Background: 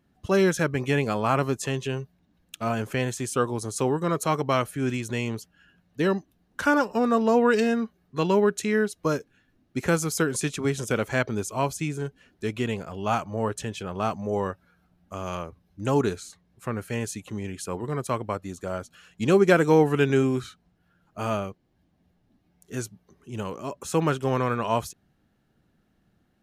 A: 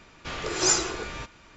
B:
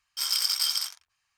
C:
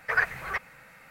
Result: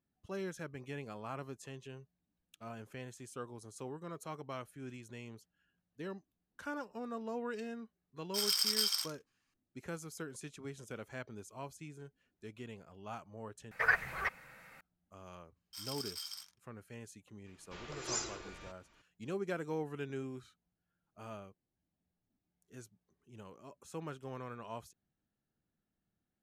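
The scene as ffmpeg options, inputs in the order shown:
-filter_complex "[2:a]asplit=2[a][b];[0:a]volume=-20dB,asplit=2[c][d];[c]atrim=end=13.714[e];[3:a]atrim=end=1.1,asetpts=PTS-STARTPTS,volume=-4.5dB[f];[d]atrim=start=14.806[g];[a]atrim=end=1.37,asetpts=PTS-STARTPTS,volume=-6dB,afade=t=in:d=0.004:c=hsin,afade=t=out:st=1.366:d=0.004:c=hsin,adelay=8170[h];[b]atrim=end=1.37,asetpts=PTS-STARTPTS,volume=-18dB,afade=t=in:d=0.004:c=hsin,afade=t=out:st=1.366:d=0.004:c=hsin,adelay=686196S[i];[1:a]atrim=end=1.56,asetpts=PTS-STARTPTS,volume=-15.5dB,afade=t=in:d=0.004:c=hsin,afade=t=out:st=1.556:d=0.004:c=hsin,adelay=17460[j];[e][f]acrossfade=d=0.004:c1=hsin:c2=hsin[k];[k][g]acrossfade=d=0.004:c1=hsin:c2=hsin[l];[l][h][i][j]amix=inputs=4:normalize=0"

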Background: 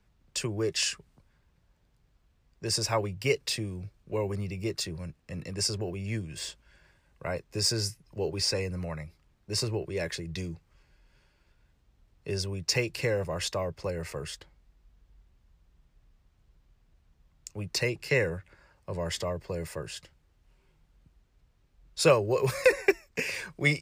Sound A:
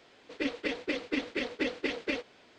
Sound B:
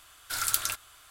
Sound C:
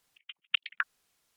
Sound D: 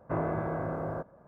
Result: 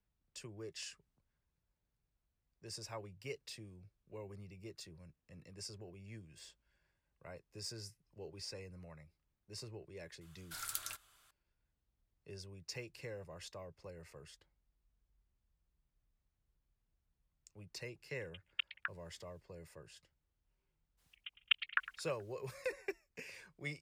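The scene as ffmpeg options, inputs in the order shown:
-filter_complex "[3:a]asplit=2[a][b];[0:a]volume=-18.5dB[c];[b]aecho=1:1:107|214|321|428:0.158|0.0792|0.0396|0.0198[d];[2:a]atrim=end=1.1,asetpts=PTS-STARTPTS,volume=-14dB,afade=t=in:d=0.004:c=hsin,afade=t=out:st=1.096:d=0.004:c=hsin,adelay=10210[e];[a]atrim=end=1.36,asetpts=PTS-STARTPTS,volume=-10dB,afade=t=in:d=0.004:c=hsin,afade=t=out:st=1.356:d=0.004:c=hsin,adelay=18050[f];[d]atrim=end=1.36,asetpts=PTS-STARTPTS,volume=-3.5dB,afade=t=in:d=0.02,afade=t=out:st=1.34:d=0.02,adelay=20970[g];[c][e][f][g]amix=inputs=4:normalize=0"

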